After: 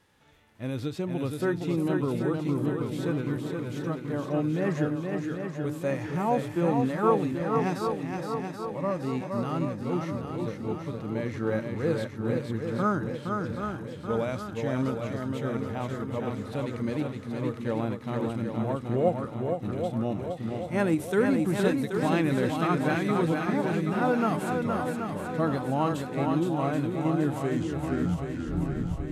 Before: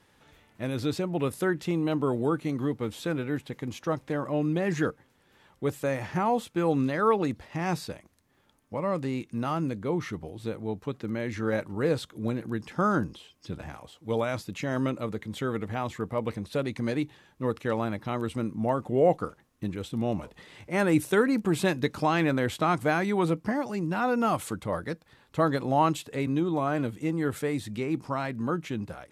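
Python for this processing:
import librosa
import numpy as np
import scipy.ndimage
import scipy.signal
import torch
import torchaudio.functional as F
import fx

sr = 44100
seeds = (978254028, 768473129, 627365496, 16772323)

p1 = fx.tape_stop_end(x, sr, length_s=1.84)
p2 = fx.hpss(p1, sr, part='percussive', gain_db=-8)
p3 = p2 + fx.echo_swing(p2, sr, ms=779, ratio=1.5, feedback_pct=53, wet_db=-4.5, dry=0)
y = fx.end_taper(p3, sr, db_per_s=230.0)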